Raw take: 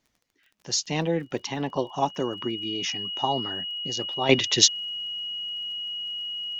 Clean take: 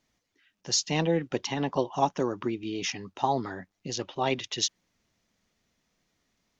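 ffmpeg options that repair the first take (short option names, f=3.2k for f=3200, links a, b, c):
-af "adeclick=t=4,bandreject=f=2.9k:w=30,asetnsamples=n=441:p=0,asendcmd='4.29 volume volume -10.5dB',volume=0dB"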